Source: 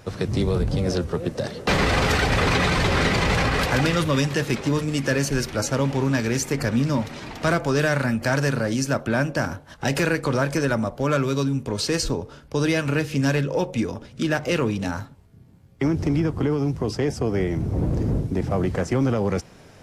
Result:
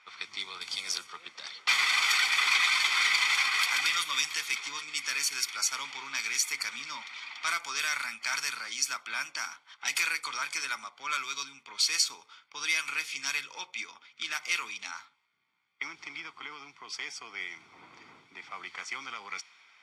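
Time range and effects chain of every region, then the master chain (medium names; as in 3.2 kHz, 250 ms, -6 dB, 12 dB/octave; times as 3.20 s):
0.61–1.07 s: treble shelf 9.6 kHz +11 dB + three bands compressed up and down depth 70%
whole clip: Chebyshev high-pass 2.2 kHz, order 2; level-controlled noise filter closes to 2.5 kHz, open at -28 dBFS; comb 0.9 ms, depth 68%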